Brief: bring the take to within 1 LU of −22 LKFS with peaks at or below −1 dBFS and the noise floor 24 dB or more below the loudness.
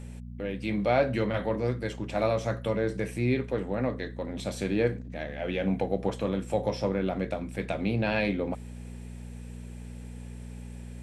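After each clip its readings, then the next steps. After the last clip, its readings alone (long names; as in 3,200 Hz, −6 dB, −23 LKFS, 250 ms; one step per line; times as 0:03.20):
mains hum 60 Hz; hum harmonics up to 240 Hz; level of the hum −38 dBFS; integrated loudness −30.0 LKFS; sample peak −12.0 dBFS; target loudness −22.0 LKFS
→ hum removal 60 Hz, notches 4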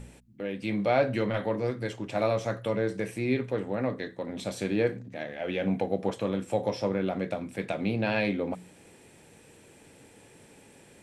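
mains hum none found; integrated loudness −30.0 LKFS; sample peak −12.0 dBFS; target loudness −22.0 LKFS
→ level +8 dB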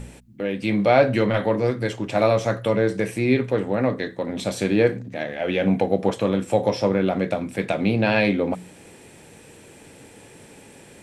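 integrated loudness −22.0 LKFS; sample peak −4.0 dBFS; background noise floor −48 dBFS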